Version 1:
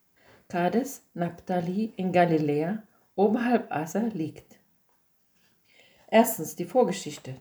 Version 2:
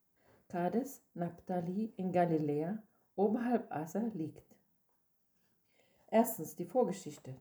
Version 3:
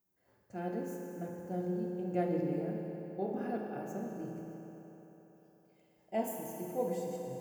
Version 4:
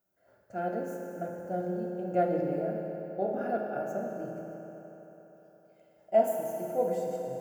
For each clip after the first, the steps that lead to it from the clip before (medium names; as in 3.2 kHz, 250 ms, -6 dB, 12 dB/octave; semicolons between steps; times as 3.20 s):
peaking EQ 3.1 kHz -10 dB 2 oct; trim -8.5 dB
reverberation RT60 4.0 s, pre-delay 3 ms, DRR -1 dB; trim -5.5 dB
small resonant body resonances 630/1400 Hz, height 15 dB, ringing for 25 ms